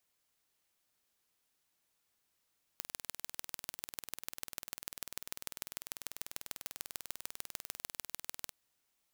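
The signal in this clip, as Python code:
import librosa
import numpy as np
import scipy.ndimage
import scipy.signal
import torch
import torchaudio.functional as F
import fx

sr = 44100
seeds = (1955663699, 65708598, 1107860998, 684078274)

y = fx.impulse_train(sr, length_s=5.7, per_s=20.2, accent_every=3, level_db=-10.5)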